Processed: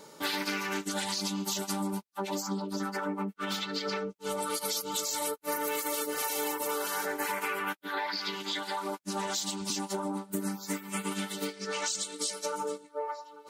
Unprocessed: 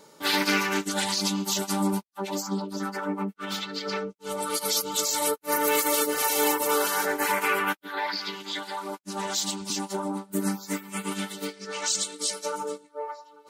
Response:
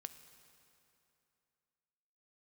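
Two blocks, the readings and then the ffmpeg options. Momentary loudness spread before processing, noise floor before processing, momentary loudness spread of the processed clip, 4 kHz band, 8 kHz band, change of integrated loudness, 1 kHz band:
11 LU, -55 dBFS, 4 LU, -5.0 dB, -6.0 dB, -5.5 dB, -5.5 dB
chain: -af "acompressor=threshold=-32dB:ratio=6,volume=2dB"

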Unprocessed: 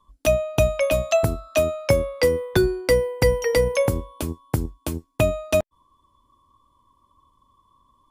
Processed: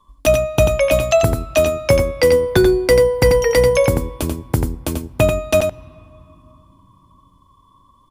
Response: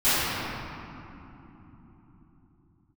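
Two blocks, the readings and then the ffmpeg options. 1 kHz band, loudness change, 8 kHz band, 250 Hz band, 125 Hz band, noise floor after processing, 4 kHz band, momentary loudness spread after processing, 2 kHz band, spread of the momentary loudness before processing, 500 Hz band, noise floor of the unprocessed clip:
+6.5 dB, +6.0 dB, +6.0 dB, +6.5 dB, +5.5 dB, -54 dBFS, +6.0 dB, 9 LU, +5.5 dB, 10 LU, +6.5 dB, -65 dBFS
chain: -filter_complex "[0:a]acontrast=42,aecho=1:1:89:0.501,asplit=2[a][b];[1:a]atrim=start_sample=2205[c];[b][c]afir=irnorm=-1:irlink=0,volume=-41.5dB[d];[a][d]amix=inputs=2:normalize=0"

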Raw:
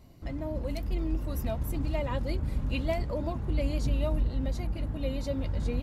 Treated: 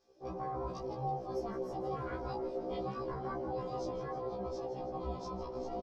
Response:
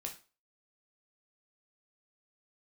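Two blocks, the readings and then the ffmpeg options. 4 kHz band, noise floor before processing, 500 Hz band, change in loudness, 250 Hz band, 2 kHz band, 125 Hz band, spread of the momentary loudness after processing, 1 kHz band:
-11.5 dB, -38 dBFS, -2.0 dB, -7.5 dB, -8.5 dB, -9.5 dB, -14.0 dB, 2 LU, +4.0 dB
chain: -filter_complex "[0:a]afwtdn=0.0178,lowshelf=f=180:g=-9.5,alimiter=level_in=8dB:limit=-24dB:level=0:latency=1,volume=-8dB,aeval=exprs='val(0)*sin(2*PI*460*n/s)':c=same,lowpass=f=5.5k:t=q:w=5.3,asplit=2[a][b];[b]adelay=13,volume=-5dB[c];[a][c]amix=inputs=2:normalize=0,asplit=8[d][e][f][g][h][i][j][k];[e]adelay=162,afreqshift=-43,volume=-12dB[l];[f]adelay=324,afreqshift=-86,volume=-16.2dB[m];[g]adelay=486,afreqshift=-129,volume=-20.3dB[n];[h]adelay=648,afreqshift=-172,volume=-24.5dB[o];[i]adelay=810,afreqshift=-215,volume=-28.6dB[p];[j]adelay=972,afreqshift=-258,volume=-32.8dB[q];[k]adelay=1134,afreqshift=-301,volume=-36.9dB[r];[d][l][m][n][o][p][q][r]amix=inputs=8:normalize=0,afftfilt=real='re*1.73*eq(mod(b,3),0)':imag='im*1.73*eq(mod(b,3),0)':win_size=2048:overlap=0.75,volume=4.5dB"

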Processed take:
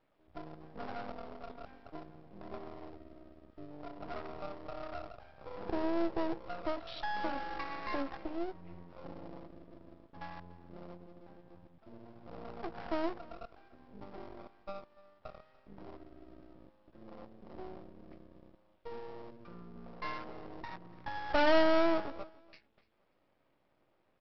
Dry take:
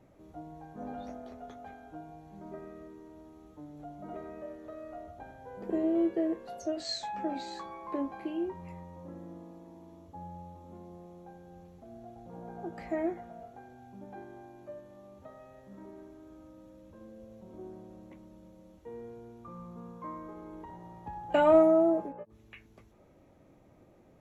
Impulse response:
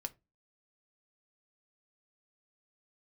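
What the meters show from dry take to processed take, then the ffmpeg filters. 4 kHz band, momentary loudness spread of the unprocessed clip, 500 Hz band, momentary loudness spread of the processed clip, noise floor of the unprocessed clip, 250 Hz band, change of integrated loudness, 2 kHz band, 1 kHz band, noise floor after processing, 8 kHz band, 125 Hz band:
-0.5 dB, 22 LU, -5.5 dB, 21 LU, -60 dBFS, -6.0 dB, -6.0 dB, +6.0 dB, -1.0 dB, -74 dBFS, n/a, -3.5 dB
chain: -filter_complex "[0:a]afwtdn=0.0112,aresample=8000,aresample=44100,asplit=2[a][b];[b]acompressor=threshold=-46dB:ratio=6,volume=3dB[c];[a][c]amix=inputs=2:normalize=0,asplit=2[d][e];[e]highpass=f=720:p=1,volume=12dB,asoftclip=type=tanh:threshold=-11dB[f];[d][f]amix=inputs=2:normalize=0,lowpass=f=2.8k:p=1,volume=-6dB,aresample=11025,aeval=exprs='max(val(0),0)':c=same,aresample=44100,aemphasis=mode=production:type=75kf,aecho=1:1:292|584:0.0794|0.0175,volume=-3.5dB"

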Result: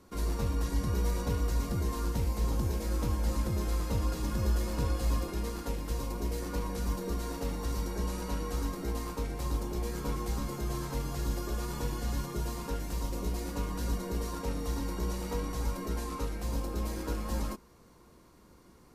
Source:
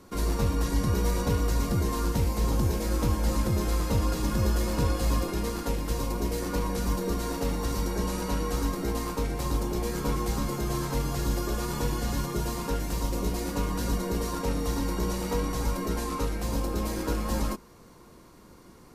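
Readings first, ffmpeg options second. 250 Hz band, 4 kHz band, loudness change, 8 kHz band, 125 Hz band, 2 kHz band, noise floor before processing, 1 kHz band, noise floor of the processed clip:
-6.5 dB, -6.5 dB, -5.0 dB, -6.5 dB, -4.5 dB, -6.5 dB, -52 dBFS, -6.5 dB, -58 dBFS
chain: -af "equalizer=f=63:t=o:w=0.3:g=7.5,volume=-6.5dB"

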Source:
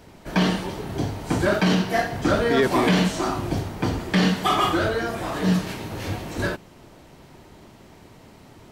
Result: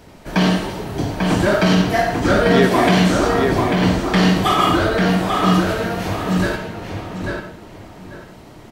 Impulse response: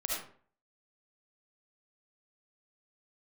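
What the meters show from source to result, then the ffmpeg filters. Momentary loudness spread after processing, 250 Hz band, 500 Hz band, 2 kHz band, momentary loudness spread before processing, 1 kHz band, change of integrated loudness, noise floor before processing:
13 LU, +6.5 dB, +6.5 dB, +6.0 dB, 10 LU, +6.5 dB, +6.0 dB, -49 dBFS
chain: -filter_complex "[0:a]asplit=2[a][b];[b]adelay=843,lowpass=f=3.3k:p=1,volume=-3dB,asplit=2[c][d];[d]adelay=843,lowpass=f=3.3k:p=1,volume=0.25,asplit=2[e][f];[f]adelay=843,lowpass=f=3.3k:p=1,volume=0.25,asplit=2[g][h];[h]adelay=843,lowpass=f=3.3k:p=1,volume=0.25[i];[a][c][e][g][i]amix=inputs=5:normalize=0,asplit=2[j][k];[1:a]atrim=start_sample=2205[l];[k][l]afir=irnorm=-1:irlink=0,volume=-5dB[m];[j][m]amix=inputs=2:normalize=0"

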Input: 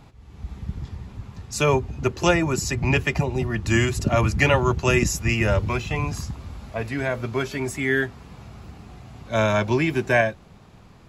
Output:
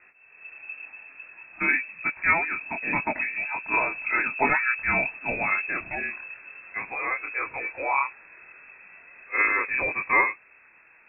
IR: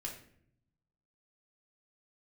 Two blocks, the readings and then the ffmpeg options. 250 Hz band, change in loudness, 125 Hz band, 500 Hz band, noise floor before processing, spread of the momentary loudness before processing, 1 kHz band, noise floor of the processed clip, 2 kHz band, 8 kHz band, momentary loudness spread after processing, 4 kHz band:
-13.5 dB, -2.5 dB, -23.5 dB, -12.0 dB, -48 dBFS, 16 LU, 0.0 dB, -56 dBFS, +2.5 dB, under -40 dB, 17 LU, under -40 dB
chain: -af "lowshelf=f=360:g=-10.5,flanger=delay=20:depth=7.5:speed=0.9,lowpass=f=2.3k:t=q:w=0.5098,lowpass=f=2.3k:t=q:w=0.6013,lowpass=f=2.3k:t=q:w=0.9,lowpass=f=2.3k:t=q:w=2.563,afreqshift=-2700,volume=3dB"

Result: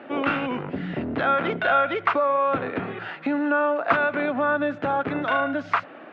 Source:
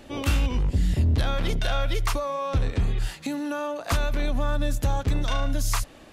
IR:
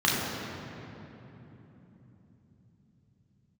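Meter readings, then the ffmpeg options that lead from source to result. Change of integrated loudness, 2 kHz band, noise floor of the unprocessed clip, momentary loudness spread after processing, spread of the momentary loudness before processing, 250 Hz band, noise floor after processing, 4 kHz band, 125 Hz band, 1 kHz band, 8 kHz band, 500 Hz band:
+3.0 dB, +10.0 dB, -48 dBFS, 9 LU, 6 LU, +4.5 dB, -43 dBFS, -5.0 dB, -12.5 dB, +9.5 dB, under -25 dB, +7.5 dB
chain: -af "highpass=f=190:w=0.5412,highpass=f=190:w=1.3066,equalizer=f=210:t=q:w=4:g=-5,equalizer=f=690:t=q:w=4:g=4,equalizer=f=1.4k:t=q:w=4:g=8,lowpass=f=2.5k:w=0.5412,lowpass=f=2.5k:w=1.3066,volume=6dB"

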